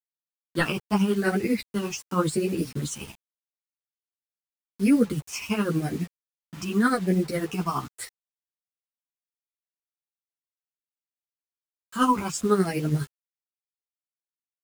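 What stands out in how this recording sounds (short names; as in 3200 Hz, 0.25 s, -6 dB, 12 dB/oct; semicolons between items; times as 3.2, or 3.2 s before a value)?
phasing stages 8, 0.88 Hz, lowest notch 520–1100 Hz; tremolo triangle 12 Hz, depth 75%; a quantiser's noise floor 8-bit, dither none; a shimmering, thickened sound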